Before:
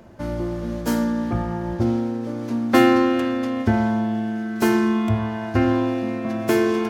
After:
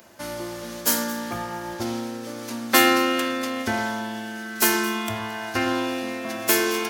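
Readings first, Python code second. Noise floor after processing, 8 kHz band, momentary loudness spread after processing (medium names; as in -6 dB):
-35 dBFS, +13.5 dB, 14 LU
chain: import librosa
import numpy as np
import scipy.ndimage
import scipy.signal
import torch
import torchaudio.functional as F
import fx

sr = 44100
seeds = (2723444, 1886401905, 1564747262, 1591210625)

y = fx.tilt_eq(x, sr, slope=4.5)
y = fx.echo_alternate(y, sr, ms=111, hz=1800.0, feedback_pct=55, wet_db=-12.5)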